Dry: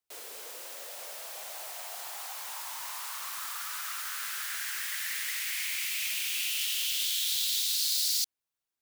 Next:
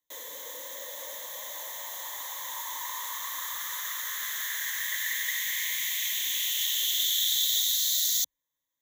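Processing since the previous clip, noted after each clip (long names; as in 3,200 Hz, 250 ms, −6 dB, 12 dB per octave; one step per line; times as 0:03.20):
EQ curve with evenly spaced ripples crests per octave 1.1, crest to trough 16 dB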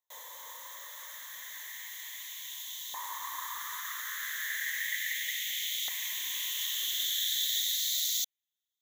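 auto-filter high-pass saw up 0.34 Hz 750–3,400 Hz
level −6 dB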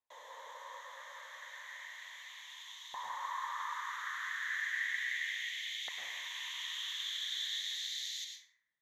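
head-to-tape spacing loss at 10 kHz 24 dB
dense smooth reverb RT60 1.2 s, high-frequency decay 0.3×, pre-delay 90 ms, DRR 0 dB
level +1 dB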